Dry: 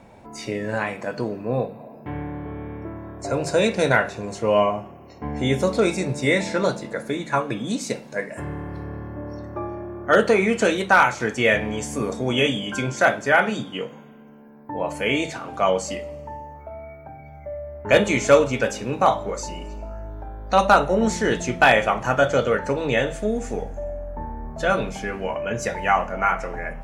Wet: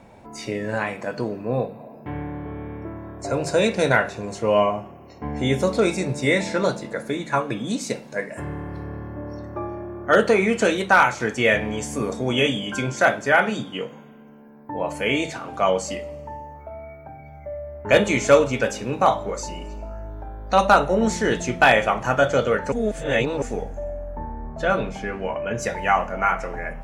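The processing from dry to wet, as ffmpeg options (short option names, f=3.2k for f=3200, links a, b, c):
-filter_complex "[0:a]asettb=1/sr,asplit=3[a][b][c];[a]atrim=end=24.184[d];[b]atrim=start=24.18:end=25.58,asetpts=PTS-STARTPTS,afade=t=in:d=0.004:c=qsin,afade=t=out:st=1.396:d=0.004:c=qsin,lowpass=f=3.5k:p=1[e];[c]atrim=start=25.576[f];[d][e]acrossfade=d=0.004:c1=hsin:c2=qsin[g];[g][f]acrossfade=d=0.004:c1=qsin:c2=hsin,asplit=3[h][i][j];[h]atrim=end=22.722[k];[i]atrim=start=22.718:end=23.422,asetpts=PTS-STARTPTS,areverse[l];[j]atrim=start=23.418[m];[k][l]acrossfade=d=0.004:c1=hsin:c2=hsin[n];[n][m]acrossfade=d=0.004:c1=hsin:c2=hsin"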